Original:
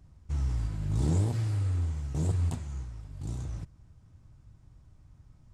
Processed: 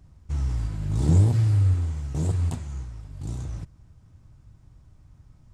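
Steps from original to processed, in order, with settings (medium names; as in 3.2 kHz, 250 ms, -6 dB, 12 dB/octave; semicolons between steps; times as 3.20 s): 1.08–1.74 s: peaking EQ 90 Hz +6 dB 2.6 oct; trim +3.5 dB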